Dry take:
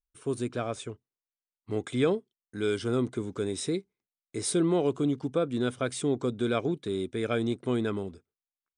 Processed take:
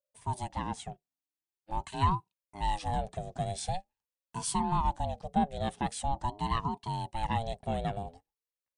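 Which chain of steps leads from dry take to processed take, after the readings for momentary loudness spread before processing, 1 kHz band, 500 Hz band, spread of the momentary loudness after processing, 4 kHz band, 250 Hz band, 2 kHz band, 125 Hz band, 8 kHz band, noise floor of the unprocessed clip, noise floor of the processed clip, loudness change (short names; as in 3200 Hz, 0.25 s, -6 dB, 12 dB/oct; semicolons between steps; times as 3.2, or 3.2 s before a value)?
9 LU, +9.5 dB, -11.5 dB, 10 LU, -3.0 dB, -8.5 dB, -6.0 dB, -0.5 dB, -3.0 dB, under -85 dBFS, under -85 dBFS, -4.0 dB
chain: graphic EQ 125/250/500/1000 Hz -6/-8/+8/-10 dB; ring modulator with a swept carrier 420 Hz, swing 35%, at 0.45 Hz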